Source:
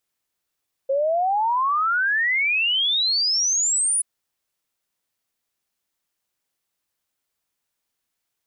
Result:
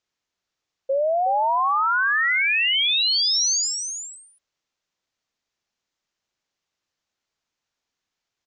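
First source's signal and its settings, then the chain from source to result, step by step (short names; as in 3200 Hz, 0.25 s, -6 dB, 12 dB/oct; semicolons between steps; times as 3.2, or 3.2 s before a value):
log sweep 530 Hz -> 10000 Hz 3.13 s -18 dBFS
steep low-pass 6900 Hz 48 dB/oct; on a send: echo 0.367 s -8.5 dB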